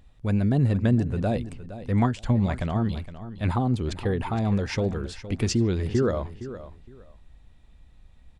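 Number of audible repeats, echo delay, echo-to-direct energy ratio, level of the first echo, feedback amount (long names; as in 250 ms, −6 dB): 2, 464 ms, −13.5 dB, −13.5 dB, 21%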